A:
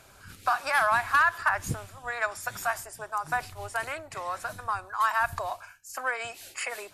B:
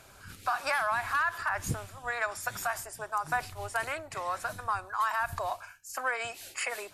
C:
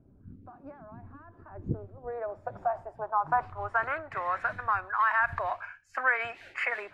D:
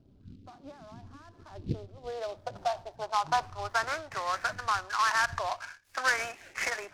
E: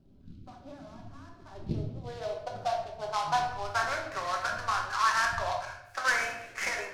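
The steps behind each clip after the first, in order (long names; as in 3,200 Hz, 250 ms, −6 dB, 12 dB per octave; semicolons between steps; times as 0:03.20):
brickwall limiter −19.5 dBFS, peak gain reduction 7.5 dB
high-shelf EQ 11,000 Hz +6.5 dB; low-pass filter sweep 260 Hz → 1,900 Hz, 0:01.13–0:04.35
short delay modulated by noise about 3,400 Hz, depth 0.036 ms; level −1 dB
rectangular room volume 240 cubic metres, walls mixed, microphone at 1.1 metres; level −2.5 dB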